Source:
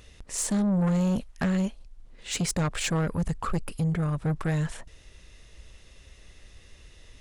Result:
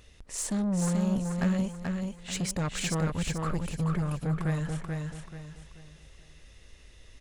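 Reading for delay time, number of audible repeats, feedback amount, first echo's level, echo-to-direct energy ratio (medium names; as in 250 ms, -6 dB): 434 ms, 4, 34%, -4.0 dB, -3.5 dB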